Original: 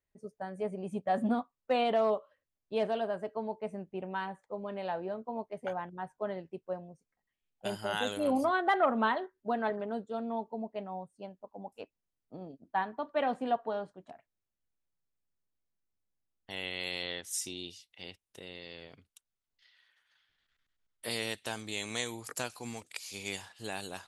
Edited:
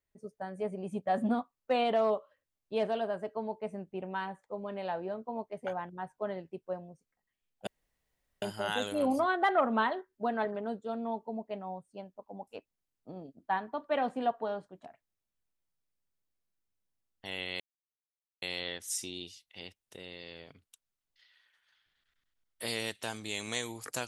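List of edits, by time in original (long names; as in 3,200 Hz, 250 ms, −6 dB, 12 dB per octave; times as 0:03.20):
0:07.67: splice in room tone 0.75 s
0:16.85: splice in silence 0.82 s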